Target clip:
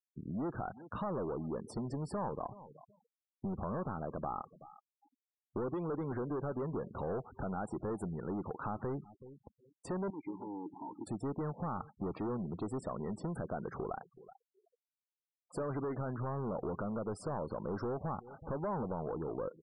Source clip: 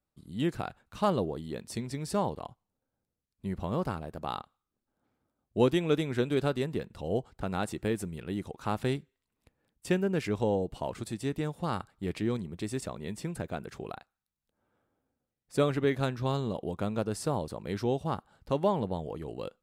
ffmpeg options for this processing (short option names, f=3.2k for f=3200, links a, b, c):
-filter_complex "[0:a]highpass=f=140:p=1,alimiter=limit=-22.5dB:level=0:latency=1:release=145,asoftclip=type=tanh:threshold=-36.5dB,asettb=1/sr,asplit=3[a][b][c];[a]atrim=end=10.104[d];[b]atrim=start=10.1:end=11.07,asetpts=PTS-STARTPTS,afade=t=in:d=0.004:c=qsin,afade=t=out:st=0.966:d=0.004:c=qsin,asplit=3[e][f][g];[e]bandpass=f=300:t=q:w=8,volume=0dB[h];[f]bandpass=f=870:t=q:w=8,volume=-6dB[i];[g]bandpass=f=2.24k:t=q:w=8,volume=-9dB[j];[h][i][j]amix=inputs=3:normalize=0[k];[c]atrim=start=11.066[l];[d][k]acrossfade=d=0.004:c1=hsin:c2=qsin[m];[m][l]acrossfade=d=0.004:c1=qsin:c2=hsin,asplit=2[n][o];[o]adelay=376,lowpass=f=3.4k:p=1,volume=-22.5dB,asplit=2[p][q];[q]adelay=376,lowpass=f=3.4k:p=1,volume=0.26[r];[n][p][r]amix=inputs=3:normalize=0,acompressor=threshold=-49dB:ratio=3,highshelf=f=1.7k:t=q:w=1.5:g=-11,afftfilt=real='re*gte(hypot(re,im),0.00141)':imag='im*gte(hypot(re,im),0.00141)':win_size=1024:overlap=0.75,volume=10.5dB"